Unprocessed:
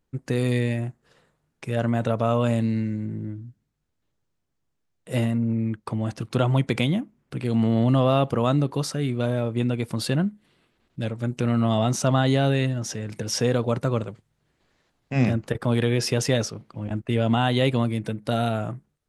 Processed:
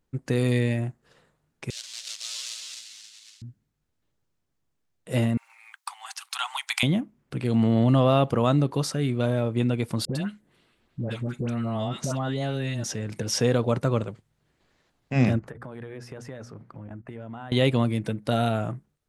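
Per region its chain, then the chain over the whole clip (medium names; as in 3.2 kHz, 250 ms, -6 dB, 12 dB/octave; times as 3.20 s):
1.70–3.42 s: block-companded coder 3-bit + Butterworth band-pass 5.5 kHz, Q 1.2 + delay 268 ms -6.5 dB
5.37–6.83 s: Chebyshev high-pass 780 Hz, order 6 + tilt EQ +3.5 dB/octave
10.05–12.84 s: phase dispersion highs, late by 103 ms, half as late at 1.1 kHz + compression 5:1, threshold -25 dBFS
15.39–17.52 s: hum notches 60/120/180/240 Hz + compression 4:1, threshold -38 dBFS + resonant high shelf 2.3 kHz -8.5 dB, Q 1.5
whole clip: none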